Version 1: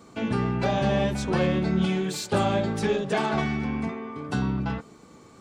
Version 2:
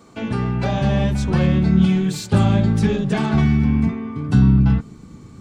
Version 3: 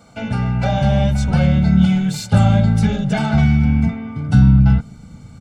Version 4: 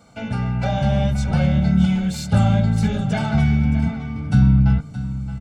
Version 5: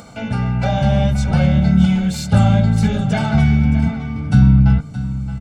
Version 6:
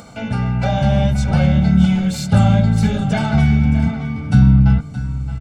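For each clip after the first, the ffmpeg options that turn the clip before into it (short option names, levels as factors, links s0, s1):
-af "asubboost=boost=8:cutoff=200,volume=1.26"
-af "aecho=1:1:1.4:0.76"
-af "aecho=1:1:620:0.224,volume=0.668"
-af "acompressor=mode=upward:threshold=0.0158:ratio=2.5,volume=1.5"
-af "aecho=1:1:653:0.126"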